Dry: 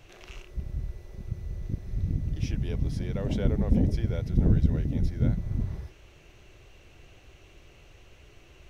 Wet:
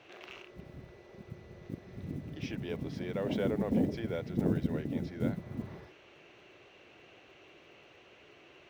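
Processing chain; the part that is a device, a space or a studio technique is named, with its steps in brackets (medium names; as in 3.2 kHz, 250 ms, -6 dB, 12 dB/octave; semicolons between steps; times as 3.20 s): early digital voice recorder (band-pass 250–3600 Hz; block-companded coder 7-bit); trim +1.5 dB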